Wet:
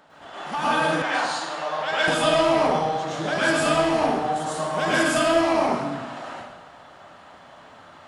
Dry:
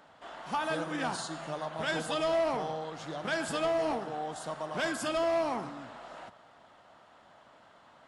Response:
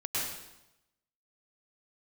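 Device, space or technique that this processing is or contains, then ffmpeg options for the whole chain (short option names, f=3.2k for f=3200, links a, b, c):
bathroom: -filter_complex "[1:a]atrim=start_sample=2205[a];[0:a][a]afir=irnorm=-1:irlink=0,asettb=1/sr,asplit=3[b][c][d];[b]atrim=end=1.024[e];[c]atrim=start=1.02:end=2.08,asetpts=PTS-STARTPTS,afade=t=in:d=0.004:c=qsin,afade=t=out:st=1.056:d=0.004:c=qsin,acrossover=split=430 6200:gain=0.141 1 0.224[f][g][h];[f][g][h]amix=inputs=3:normalize=0[i];[d]atrim=start=2.076[j];[e][i]acrossfade=d=0.004:c1=hsin:c2=qsin[k];[k][j]acrossfade=d=0.004:c1=qsin:c2=hsin,volume=5.5dB"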